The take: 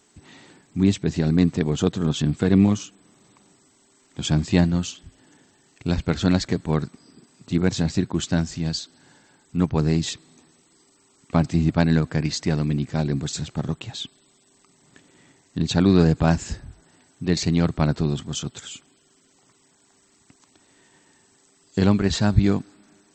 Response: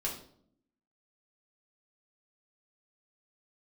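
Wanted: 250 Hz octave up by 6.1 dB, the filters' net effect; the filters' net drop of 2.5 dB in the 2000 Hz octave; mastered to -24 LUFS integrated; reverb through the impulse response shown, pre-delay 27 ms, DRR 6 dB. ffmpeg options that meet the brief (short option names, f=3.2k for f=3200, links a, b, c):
-filter_complex "[0:a]equalizer=f=250:t=o:g=8.5,equalizer=f=2k:t=o:g=-3.5,asplit=2[a][b];[1:a]atrim=start_sample=2205,adelay=27[c];[b][c]afir=irnorm=-1:irlink=0,volume=-9dB[d];[a][d]amix=inputs=2:normalize=0,volume=-7.5dB"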